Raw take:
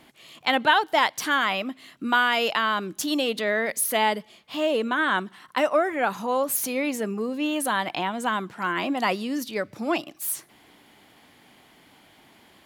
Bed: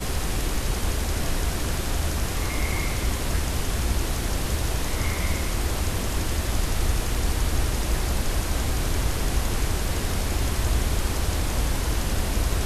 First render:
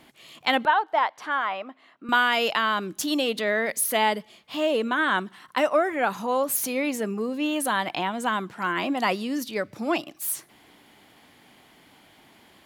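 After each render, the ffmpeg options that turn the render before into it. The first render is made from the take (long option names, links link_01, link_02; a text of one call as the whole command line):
ffmpeg -i in.wav -filter_complex "[0:a]asettb=1/sr,asplit=3[link_01][link_02][link_03];[link_01]atrim=end=0.654[link_04];[link_02]atrim=start=0.65:end=2.09,asetpts=PTS-STARTPTS,afade=type=in:duration=0.004:curve=qsin,afade=type=out:start_time=1.436:duration=0.004:curve=qsin,bandpass=frequency=900:width_type=q:width=1.1[link_05];[link_03]atrim=start=2.086[link_06];[link_04][link_05]acrossfade=duration=0.004:curve1=hsin:curve2=qsin[link_07];[link_07][link_06]acrossfade=duration=0.004:curve1=qsin:curve2=hsin" out.wav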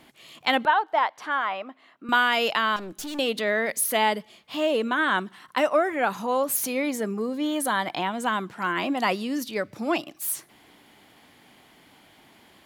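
ffmpeg -i in.wav -filter_complex "[0:a]asettb=1/sr,asplit=3[link_01][link_02][link_03];[link_01]atrim=end=2.764[link_04];[link_02]atrim=start=2.76:end=3.19,asetpts=PTS-STARTPTS,afade=type=in:duration=0.004:curve=qsin,afade=type=out:start_time=0.426:duration=0.004:curve=qsin,aeval=exprs='(tanh(39.8*val(0)+0.35)-tanh(0.35))/39.8':channel_layout=same[link_05];[link_03]atrim=start=3.186[link_06];[link_04][link_05]acrossfade=duration=0.004:curve1=hsin:curve2=qsin[link_07];[link_07][link_06]acrossfade=duration=0.004:curve1=qsin:curve2=hsin,asettb=1/sr,asplit=3[link_08][link_09][link_10];[link_08]atrim=end=6.824[link_11];[link_09]atrim=start=6.82:end=7.99,asetpts=PTS-STARTPTS,afade=type=in:duration=0.004:curve=qsin,afade=type=out:start_time=1.166:duration=0.004:curve=qsin,bandreject=frequency=2700:width=6.4[link_12];[link_10]atrim=start=7.986[link_13];[link_11][link_12]acrossfade=duration=0.004:curve1=hsin:curve2=qsin[link_14];[link_14][link_13]acrossfade=duration=0.004:curve1=qsin:curve2=hsin" out.wav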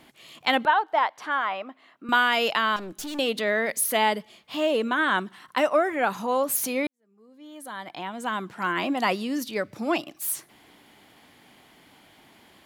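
ffmpeg -i in.wav -filter_complex "[0:a]asplit=2[link_01][link_02];[link_01]atrim=end=6.87,asetpts=PTS-STARTPTS,afade=type=out:start_time=6.866:duration=0.004:curve=hsin[link_03];[link_02]atrim=start=6.87,asetpts=PTS-STARTPTS,afade=type=in:duration=1.74:curve=qua[link_04];[link_03][link_04]concat=n=2:v=0:a=1" out.wav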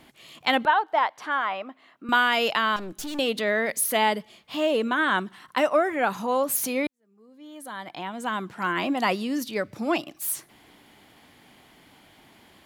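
ffmpeg -i in.wav -af "lowshelf=frequency=110:gain=5.5" out.wav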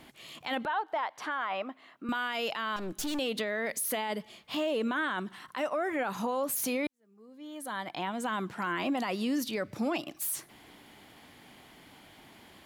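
ffmpeg -i in.wav -af "acompressor=threshold=-25dB:ratio=6,alimiter=limit=-23.5dB:level=0:latency=1:release=12" out.wav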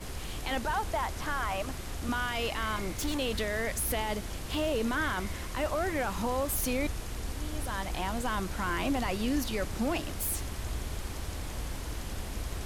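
ffmpeg -i in.wav -i bed.wav -filter_complex "[1:a]volume=-12.5dB[link_01];[0:a][link_01]amix=inputs=2:normalize=0" out.wav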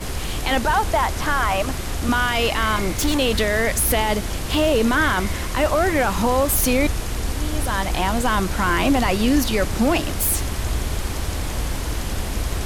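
ffmpeg -i in.wav -af "volume=12dB" out.wav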